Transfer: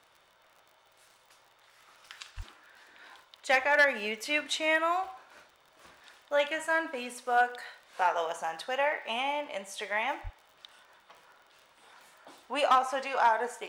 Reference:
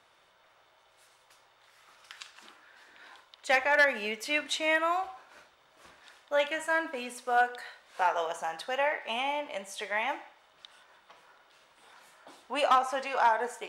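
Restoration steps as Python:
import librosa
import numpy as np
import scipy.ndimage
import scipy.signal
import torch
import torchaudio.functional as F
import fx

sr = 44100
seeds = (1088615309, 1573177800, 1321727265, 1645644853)

y = fx.fix_declick_ar(x, sr, threshold=6.5)
y = fx.fix_deplosive(y, sr, at_s=(2.36, 10.23))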